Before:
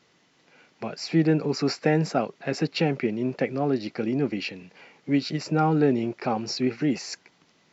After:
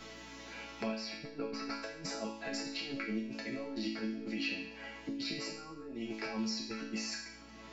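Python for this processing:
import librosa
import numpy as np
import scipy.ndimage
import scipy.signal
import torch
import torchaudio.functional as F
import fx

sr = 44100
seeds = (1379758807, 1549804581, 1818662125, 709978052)

y = fx.lowpass(x, sr, hz=fx.line((0.87, 4100.0), (1.8, 1900.0)), slope=12, at=(0.87, 1.8), fade=0.02)
y = fx.over_compress(y, sr, threshold_db=-30.0, ratio=-0.5)
y = fx.add_hum(y, sr, base_hz=60, snr_db=21)
y = fx.resonator_bank(y, sr, root=57, chord='major', decay_s=0.57)
y = fx.band_squash(y, sr, depth_pct=70)
y = y * librosa.db_to_amplitude(12.0)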